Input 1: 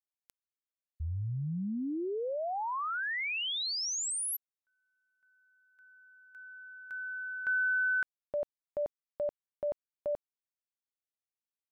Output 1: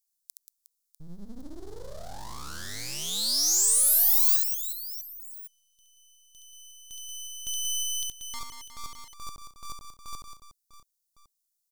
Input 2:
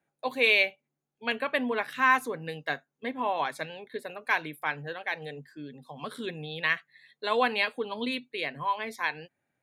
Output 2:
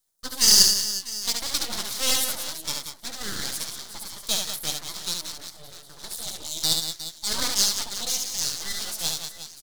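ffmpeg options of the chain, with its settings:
-af "aecho=1:1:70|182|361.2|647.9|1107:0.631|0.398|0.251|0.158|0.1,aeval=exprs='abs(val(0))':c=same,aexciter=amount=9.7:drive=6:freq=3800,volume=0.531"

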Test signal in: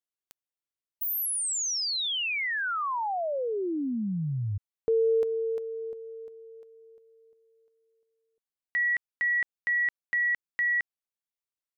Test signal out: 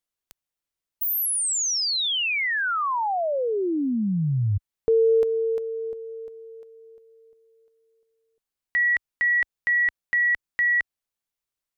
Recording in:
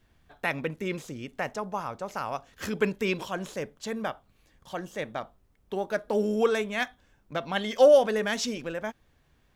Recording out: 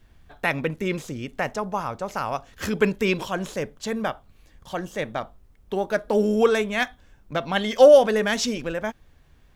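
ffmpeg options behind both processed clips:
-af "lowshelf=f=68:g=9.5,volume=1.78"

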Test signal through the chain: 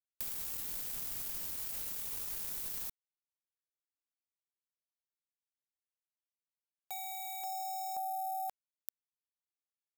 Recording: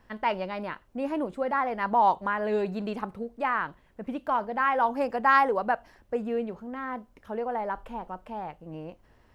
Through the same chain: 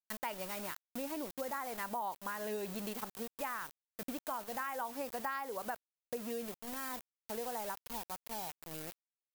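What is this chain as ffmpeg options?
-af "aeval=exprs='val(0)*gte(abs(val(0)),0.0133)':c=same,aemphasis=mode=production:type=75fm,acompressor=threshold=0.0282:ratio=6,volume=0.531"

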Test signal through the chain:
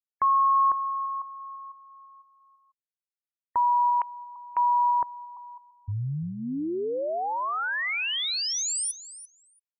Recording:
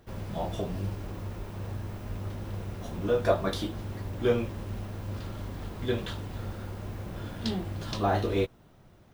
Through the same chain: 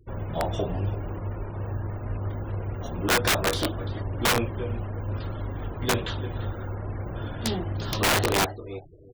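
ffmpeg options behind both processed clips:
-filter_complex "[0:a]equalizer=f=200:t=o:w=0.35:g=-8,asplit=2[s0][s1];[s1]aecho=0:1:342|684:0.178|0.032[s2];[s0][s2]amix=inputs=2:normalize=0,afftfilt=real='re*gte(hypot(re,im),0.00447)':imag='im*gte(hypot(re,im),0.00447)':win_size=1024:overlap=0.75,aeval=exprs='(mod(11.9*val(0)+1,2)-1)/11.9':c=same,volume=1.88"

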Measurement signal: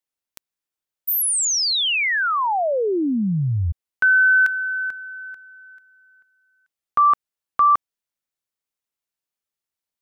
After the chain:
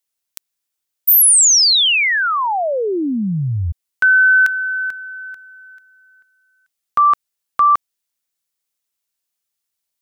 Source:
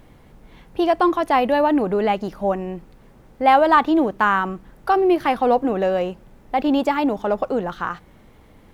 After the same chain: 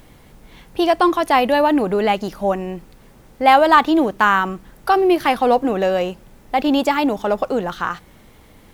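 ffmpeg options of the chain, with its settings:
-af "highshelf=f=2800:g=9.5,volume=1.19"

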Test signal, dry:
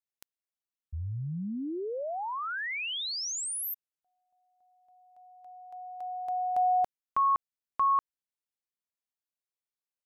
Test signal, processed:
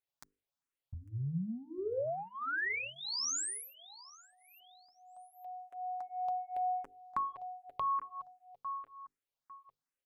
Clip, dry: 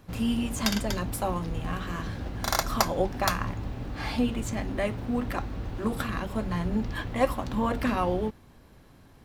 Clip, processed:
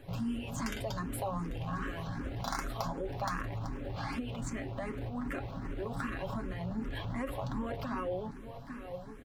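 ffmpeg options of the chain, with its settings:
-filter_complex "[0:a]highshelf=f=3400:g=-8,aecho=1:1:7.3:0.5,aecho=1:1:851|1702:0.0794|0.0246,acompressor=threshold=0.00891:ratio=5:attack=18:release=21:knee=1:detection=rms,bandreject=f=50:t=h:w=6,bandreject=f=100:t=h:w=6,bandreject=f=150:t=h:w=6,bandreject=f=200:t=h:w=6,bandreject=f=250:t=h:w=6,bandreject=f=300:t=h:w=6,bandreject=f=350:t=h:w=6,bandreject=f=400:t=h:w=6,bandreject=f=450:t=h:w=6,bandreject=f=500:t=h:w=6,asplit=2[s0][s1];[s1]afreqshift=2.6[s2];[s0][s2]amix=inputs=2:normalize=1,volume=2"

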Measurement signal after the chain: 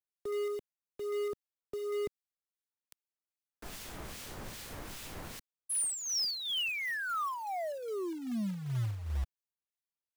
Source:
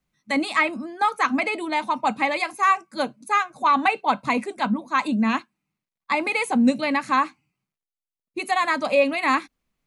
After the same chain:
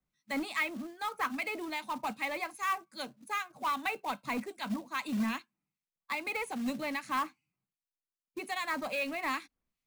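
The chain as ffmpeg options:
-filter_complex "[0:a]acrossover=split=1900[s0][s1];[s0]aeval=exprs='val(0)*(1-0.7/2+0.7/2*cos(2*PI*2.5*n/s))':c=same[s2];[s1]aeval=exprs='val(0)*(1-0.7/2-0.7/2*cos(2*PI*2.5*n/s))':c=same[s3];[s2][s3]amix=inputs=2:normalize=0,acrossover=split=200|1300|4500[s4][s5][s6][s7];[s5]asoftclip=type=tanh:threshold=0.0473[s8];[s4][s8][s6][s7]amix=inputs=4:normalize=0,acrusher=bits=4:mode=log:mix=0:aa=0.000001,volume=0.447"

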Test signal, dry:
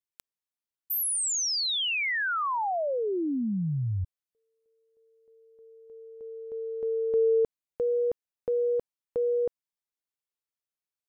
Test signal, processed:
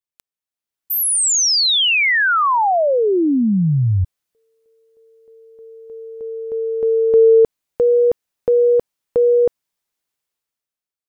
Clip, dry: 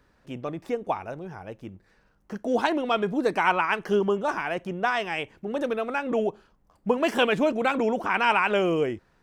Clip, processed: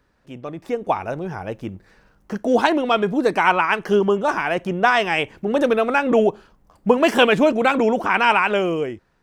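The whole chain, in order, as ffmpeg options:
-af "dynaudnorm=f=160:g=11:m=5.01,volume=0.891"

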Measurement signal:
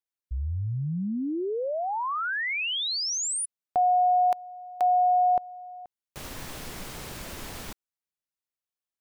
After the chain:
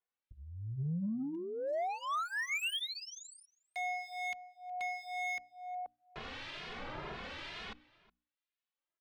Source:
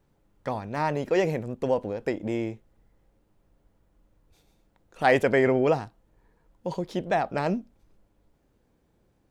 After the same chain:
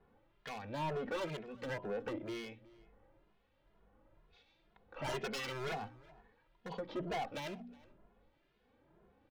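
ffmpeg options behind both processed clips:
-filter_complex "[0:a]lowpass=f=3700:w=0.5412,lowpass=f=3700:w=1.3066,lowshelf=f=330:g=-9,bandreject=f=60:t=h:w=6,bandreject=f=120:t=h:w=6,bandreject=f=180:t=h:w=6,bandreject=f=240:t=h:w=6,bandreject=f=300:t=h:w=6,acompressor=threshold=0.00562:ratio=1.5:attack=1.4:release=214:detection=peak,aeval=exprs='0.02*(abs(mod(val(0)/0.02+3,4)-2)-1)':c=same,acrossover=split=1800[s0][s1];[s0]aeval=exprs='val(0)*(1-0.7/2+0.7/2*cos(2*PI*1*n/s))':c=same[s2];[s1]aeval=exprs='val(0)*(1-0.7/2-0.7/2*cos(2*PI*1*n/s))':c=same[s3];[s2][s3]amix=inputs=2:normalize=0,asoftclip=type=tanh:threshold=0.0112,asplit=2[s4][s5];[s5]adelay=367.3,volume=0.0891,highshelf=f=4000:g=-8.27[s6];[s4][s6]amix=inputs=2:normalize=0,asplit=2[s7][s8];[s8]adelay=2.4,afreqshift=2.1[s9];[s7][s9]amix=inputs=2:normalize=1,volume=2.82"

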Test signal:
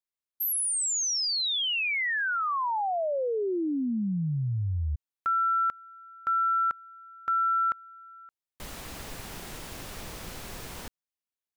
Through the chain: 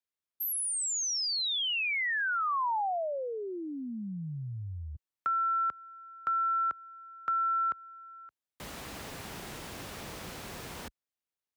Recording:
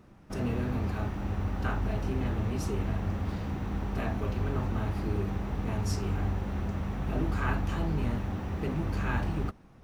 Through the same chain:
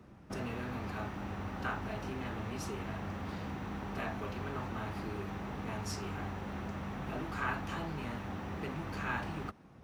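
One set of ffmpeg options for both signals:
-filter_complex "[0:a]highpass=44,highshelf=f=5200:g=-4.5,acrossover=split=110|750[s0][s1][s2];[s0]acompressor=threshold=0.00251:ratio=4[s3];[s1]acompressor=threshold=0.01:ratio=4[s4];[s2]acompressor=threshold=0.0355:ratio=4[s5];[s3][s4][s5]amix=inputs=3:normalize=0"

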